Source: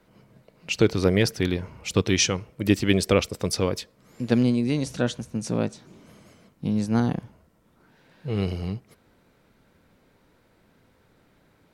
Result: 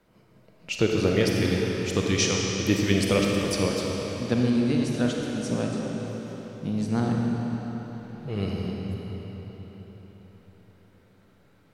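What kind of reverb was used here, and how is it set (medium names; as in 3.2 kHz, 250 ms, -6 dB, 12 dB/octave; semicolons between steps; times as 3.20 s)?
algorithmic reverb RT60 4.6 s, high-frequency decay 0.85×, pre-delay 5 ms, DRR -1.5 dB; trim -4 dB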